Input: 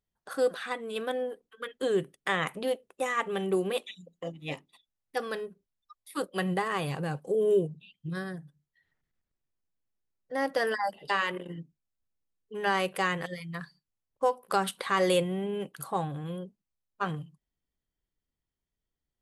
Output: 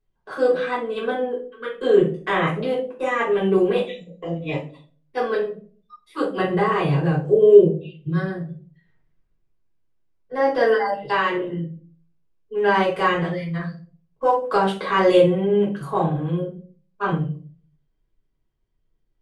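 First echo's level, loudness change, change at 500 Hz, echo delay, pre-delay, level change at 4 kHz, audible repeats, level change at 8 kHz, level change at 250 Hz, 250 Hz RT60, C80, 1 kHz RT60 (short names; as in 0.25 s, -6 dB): none, +10.0 dB, +11.5 dB, none, 3 ms, +4.0 dB, none, n/a, +11.0 dB, 0.60 s, 14.0 dB, 0.35 s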